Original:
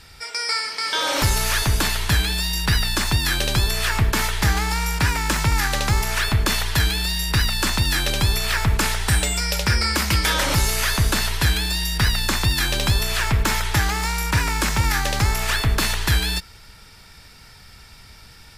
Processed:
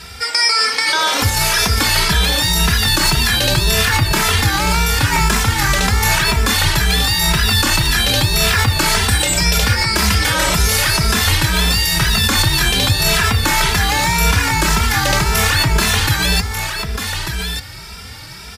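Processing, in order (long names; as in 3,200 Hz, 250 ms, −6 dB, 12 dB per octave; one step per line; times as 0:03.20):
high-pass filter 51 Hz
in parallel at +2 dB: compressor whose output falls as the input rises −26 dBFS, ratio −0.5
on the sum: single-tap delay 1,193 ms −7 dB
barber-pole flanger 2.6 ms +1.9 Hz
level +5 dB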